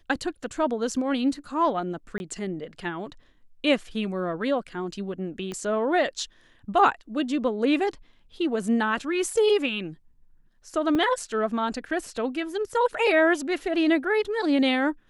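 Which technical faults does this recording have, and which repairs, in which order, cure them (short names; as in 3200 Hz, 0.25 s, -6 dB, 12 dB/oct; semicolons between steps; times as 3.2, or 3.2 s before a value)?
2.18–2.2 gap 21 ms
5.52 pop -21 dBFS
10.95 gap 2.4 ms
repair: de-click; interpolate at 2.18, 21 ms; interpolate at 10.95, 2.4 ms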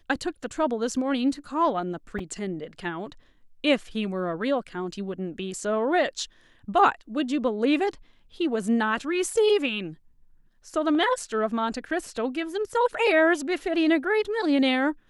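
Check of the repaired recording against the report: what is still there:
5.52 pop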